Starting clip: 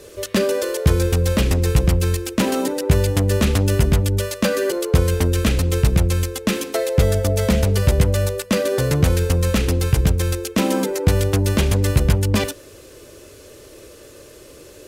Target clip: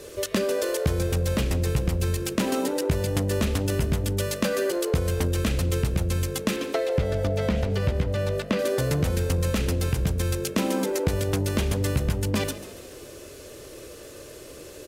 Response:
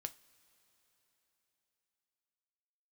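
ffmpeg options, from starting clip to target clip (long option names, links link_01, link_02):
-filter_complex "[0:a]asettb=1/sr,asplit=3[link_01][link_02][link_03];[link_01]atrim=end=6.564[link_04];[link_02]atrim=start=6.56:end=8.59,asetpts=PTS-STARTPTS,afade=type=in:duration=0.004:curve=qsin,afade=type=out:start_time=2.026:duration=0.004:curve=qsin,acrossover=split=4500[link_05][link_06];[link_06]acompressor=threshold=-45dB:ratio=4:attack=1:release=60[link_07];[link_05][link_07]amix=inputs=2:normalize=0[link_08];[link_03]atrim=start=8.586[link_09];[link_04][link_08]acrossfade=duration=0.004:curve1=hsin:curve2=qsin[link_10];[link_10][link_09]acrossfade=duration=0.004:curve1=qsin:curve2=hsin,bandreject=frequency=50:width_type=h:width=6,bandreject=frequency=100:width_type=h:width=6,acompressor=threshold=-23dB:ratio=3,asplit=6[link_11][link_12][link_13][link_14][link_15][link_16];[link_12]adelay=141,afreqshift=51,volume=-15.5dB[link_17];[link_13]adelay=282,afreqshift=102,volume=-21.3dB[link_18];[link_14]adelay=423,afreqshift=153,volume=-27.2dB[link_19];[link_15]adelay=564,afreqshift=204,volume=-33dB[link_20];[link_16]adelay=705,afreqshift=255,volume=-38.9dB[link_21];[link_11][link_17][link_18][link_19][link_20][link_21]amix=inputs=6:normalize=0"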